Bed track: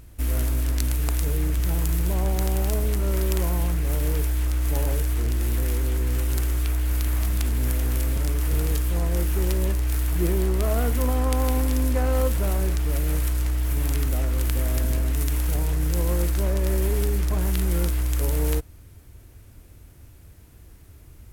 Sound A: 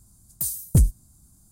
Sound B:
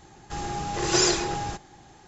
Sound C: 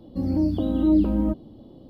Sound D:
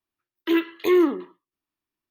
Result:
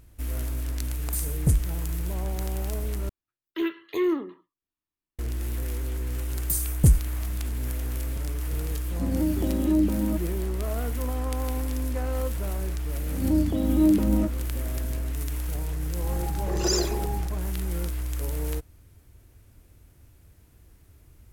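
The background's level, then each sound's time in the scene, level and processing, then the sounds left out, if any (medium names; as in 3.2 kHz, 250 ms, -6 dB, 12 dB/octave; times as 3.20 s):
bed track -6.5 dB
0.72 s: add A -4.5 dB + resampled via 32 kHz
3.09 s: replace with D -7.5 dB + bass shelf 100 Hz +12 dB
6.09 s: add A -0.5 dB
8.84 s: add C -3.5 dB + high-pass 83 Hz 24 dB/octave
12.94 s: add C -1 dB + attacks held to a fixed rise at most 130 dB/s
15.71 s: add B -4 dB + resonances exaggerated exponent 2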